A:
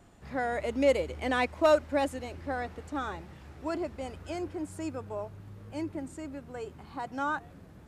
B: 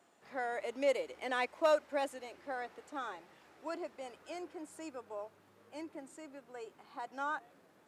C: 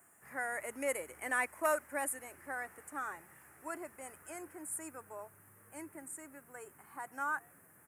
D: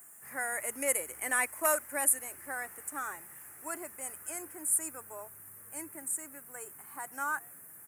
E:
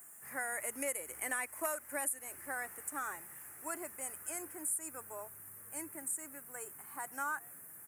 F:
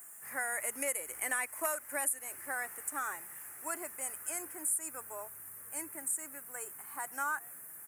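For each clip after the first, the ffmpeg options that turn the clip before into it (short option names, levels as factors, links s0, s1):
-af "highpass=400,volume=0.531"
-af "firequalizer=gain_entry='entry(130,0);entry(200,-9);entry(520,-14);entry(1100,-7);entry(1800,-2);entry(3700,-26);entry(9300,12)':delay=0.05:min_phase=1,volume=2.51"
-af "crystalizer=i=2.5:c=0,volume=1.12"
-af "acompressor=threshold=0.0224:ratio=4,volume=0.891"
-af "lowshelf=f=410:g=-7,volume=1.5"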